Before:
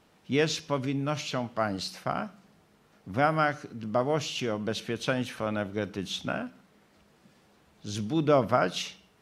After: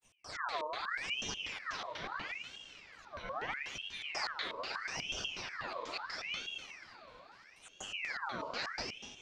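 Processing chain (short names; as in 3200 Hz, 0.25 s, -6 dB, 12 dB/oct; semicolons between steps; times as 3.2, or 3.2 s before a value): spectral delay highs early, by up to 0.294 s; expander -57 dBFS; tone controls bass +1 dB, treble +14 dB; transient shaper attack -11 dB, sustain +5 dB; reverse; compressor, threshold -39 dBFS, peak gain reduction 18 dB; reverse; grains, pitch spread up and down by 0 st; FDN reverb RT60 1.5 s, low-frequency decay 0.9×, high-frequency decay 0.8×, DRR 0 dB; LFO low-pass square 4.1 Hz 270–3100 Hz; on a send: diffused feedback echo 0.758 s, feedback 43%, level -15 dB; on the sum: ring modulator with a swept carrier 1900 Hz, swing 60%, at 0.77 Hz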